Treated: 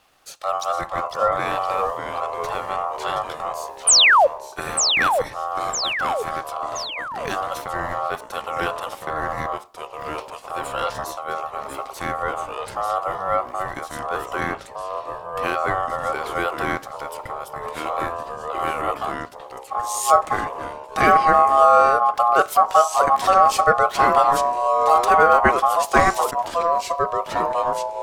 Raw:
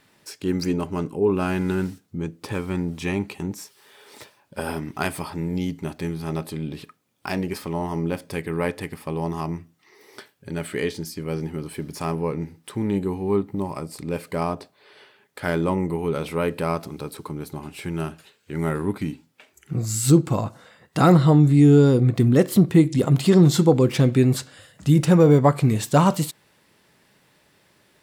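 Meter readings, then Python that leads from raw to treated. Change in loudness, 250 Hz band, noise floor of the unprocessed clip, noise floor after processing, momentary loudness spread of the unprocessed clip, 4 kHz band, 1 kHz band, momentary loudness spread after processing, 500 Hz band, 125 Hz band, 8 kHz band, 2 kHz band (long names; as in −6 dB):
+1.5 dB, −14.5 dB, −62 dBFS, −39 dBFS, 17 LU, +11.5 dB, +13.5 dB, 16 LU, +1.5 dB, −18.5 dB, +9.0 dB, +11.0 dB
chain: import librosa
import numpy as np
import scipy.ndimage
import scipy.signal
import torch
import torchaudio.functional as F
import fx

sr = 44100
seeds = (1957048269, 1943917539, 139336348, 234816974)

y = x * np.sin(2.0 * np.pi * 950.0 * np.arange(len(x)) / sr)
y = fx.spec_paint(y, sr, seeds[0], shape='fall', start_s=3.87, length_s=0.4, low_hz=500.0, high_hz=10000.0, level_db=-15.0)
y = fx.echo_pitch(y, sr, ms=426, semitones=-2, count=3, db_per_echo=-6.0)
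y = F.gain(torch.from_numpy(y), 2.5).numpy()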